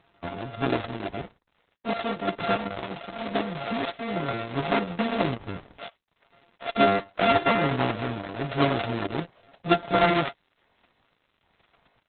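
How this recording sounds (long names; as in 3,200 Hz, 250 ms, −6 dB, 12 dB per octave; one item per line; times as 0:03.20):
a buzz of ramps at a fixed pitch in blocks of 64 samples
sample-and-hold tremolo
a quantiser's noise floor 10 bits, dither none
Opus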